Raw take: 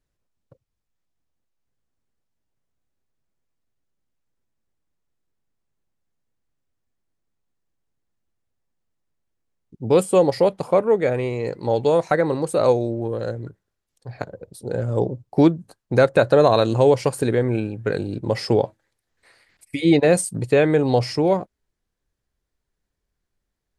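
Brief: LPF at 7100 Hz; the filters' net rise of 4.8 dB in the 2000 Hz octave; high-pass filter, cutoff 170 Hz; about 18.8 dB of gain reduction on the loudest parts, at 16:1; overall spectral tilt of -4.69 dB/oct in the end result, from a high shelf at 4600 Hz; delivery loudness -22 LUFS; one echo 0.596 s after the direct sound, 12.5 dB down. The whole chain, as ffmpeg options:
-af "highpass=170,lowpass=7.1k,equalizer=f=2k:t=o:g=5.5,highshelf=f=4.6k:g=5,acompressor=threshold=-29dB:ratio=16,aecho=1:1:596:0.237,volume=13dB"

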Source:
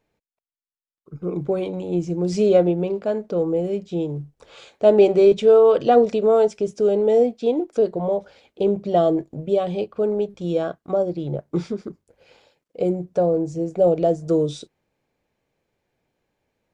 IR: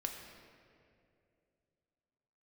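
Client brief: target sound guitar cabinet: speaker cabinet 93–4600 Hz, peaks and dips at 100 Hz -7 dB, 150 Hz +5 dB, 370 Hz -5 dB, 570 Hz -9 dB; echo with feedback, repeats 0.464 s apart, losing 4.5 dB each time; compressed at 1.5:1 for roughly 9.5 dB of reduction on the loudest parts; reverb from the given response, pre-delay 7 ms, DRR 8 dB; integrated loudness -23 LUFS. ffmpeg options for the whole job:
-filter_complex "[0:a]acompressor=threshold=-37dB:ratio=1.5,aecho=1:1:464|928|1392|1856|2320|2784|3248|3712|4176:0.596|0.357|0.214|0.129|0.0772|0.0463|0.0278|0.0167|0.01,asplit=2[a][b];[1:a]atrim=start_sample=2205,adelay=7[c];[b][c]afir=irnorm=-1:irlink=0,volume=-8dB[d];[a][d]amix=inputs=2:normalize=0,highpass=93,equalizer=f=100:t=q:w=4:g=-7,equalizer=f=150:t=q:w=4:g=5,equalizer=f=370:t=q:w=4:g=-5,equalizer=f=570:t=q:w=4:g=-9,lowpass=f=4.6k:w=0.5412,lowpass=f=4.6k:w=1.3066,volume=6dB"

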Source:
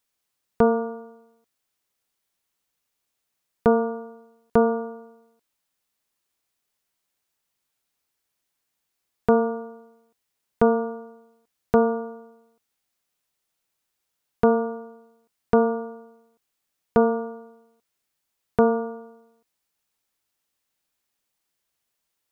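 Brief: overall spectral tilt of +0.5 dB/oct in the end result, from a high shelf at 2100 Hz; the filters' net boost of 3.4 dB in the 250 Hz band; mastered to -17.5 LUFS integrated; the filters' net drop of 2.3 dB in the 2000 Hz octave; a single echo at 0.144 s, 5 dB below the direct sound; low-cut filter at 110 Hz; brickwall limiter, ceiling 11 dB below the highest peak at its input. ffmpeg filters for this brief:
-af "highpass=110,equalizer=f=250:t=o:g=4,equalizer=f=2k:t=o:g=-8,highshelf=f=2.1k:g=6,alimiter=limit=-16dB:level=0:latency=1,aecho=1:1:144:0.562,volume=9.5dB"

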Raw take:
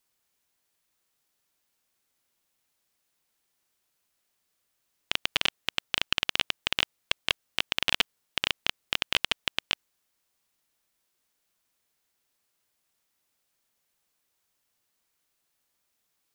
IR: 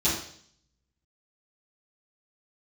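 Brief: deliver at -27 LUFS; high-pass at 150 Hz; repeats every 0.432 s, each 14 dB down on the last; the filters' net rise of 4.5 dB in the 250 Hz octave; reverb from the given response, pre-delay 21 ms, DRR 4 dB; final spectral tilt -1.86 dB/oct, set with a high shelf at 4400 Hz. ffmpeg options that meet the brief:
-filter_complex "[0:a]highpass=150,equalizer=f=250:t=o:g=6.5,highshelf=f=4.4k:g=-6.5,aecho=1:1:432|864:0.2|0.0399,asplit=2[a][b];[1:a]atrim=start_sample=2205,adelay=21[c];[b][c]afir=irnorm=-1:irlink=0,volume=-15.5dB[d];[a][d]amix=inputs=2:normalize=0,volume=1.5dB"

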